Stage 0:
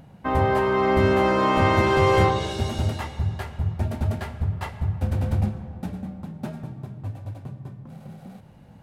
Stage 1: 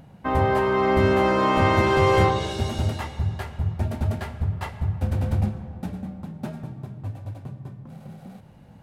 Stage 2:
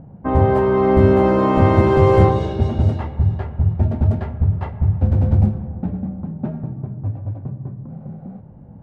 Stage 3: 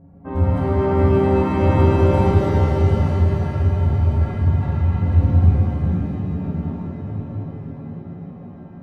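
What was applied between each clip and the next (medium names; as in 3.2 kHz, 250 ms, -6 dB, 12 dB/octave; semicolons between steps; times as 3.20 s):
no audible change
level-controlled noise filter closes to 1.3 kHz, open at -16 dBFS; tilt shelf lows +8.5 dB, about 1.1 kHz
inharmonic resonator 83 Hz, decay 0.29 s, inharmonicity 0.03; pitch-shifted reverb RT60 3.6 s, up +7 st, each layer -8 dB, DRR -7.5 dB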